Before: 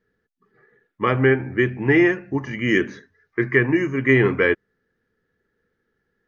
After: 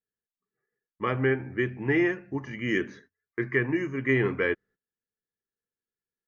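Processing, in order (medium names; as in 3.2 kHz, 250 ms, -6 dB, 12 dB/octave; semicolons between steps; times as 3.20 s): gate -46 dBFS, range -19 dB; trim -8 dB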